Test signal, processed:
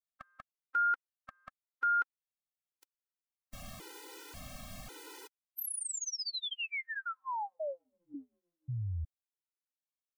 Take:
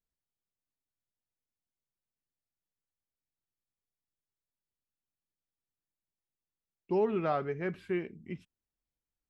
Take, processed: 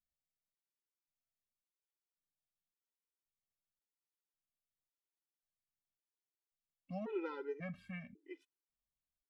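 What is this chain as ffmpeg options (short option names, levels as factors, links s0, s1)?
-af "bandreject=f=1700:w=19,afftfilt=real='re*gt(sin(2*PI*0.92*pts/sr)*(1-2*mod(floor(b*sr/1024/260),2)),0)':imag='im*gt(sin(2*PI*0.92*pts/sr)*(1-2*mod(floor(b*sr/1024/260),2)),0)':win_size=1024:overlap=0.75,volume=0.531"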